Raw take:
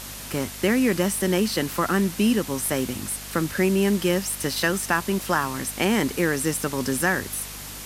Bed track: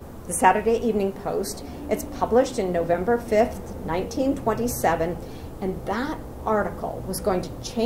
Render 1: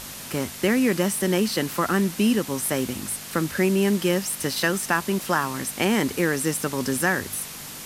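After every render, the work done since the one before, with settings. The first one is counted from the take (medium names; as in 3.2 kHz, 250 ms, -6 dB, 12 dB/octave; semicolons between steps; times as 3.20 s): de-hum 50 Hz, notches 2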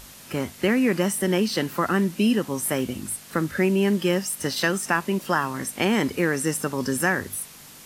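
noise print and reduce 8 dB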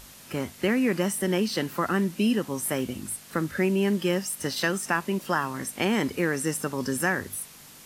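trim -3 dB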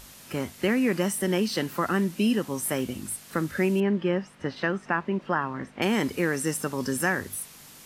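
3.80–5.82 s: low-pass 2.1 kHz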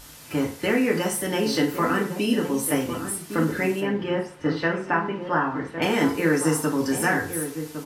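echo from a far wall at 190 m, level -9 dB; FDN reverb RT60 0.45 s, low-frequency decay 0.75×, high-frequency decay 0.65×, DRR -1.5 dB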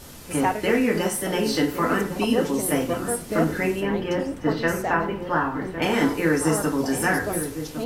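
add bed track -7 dB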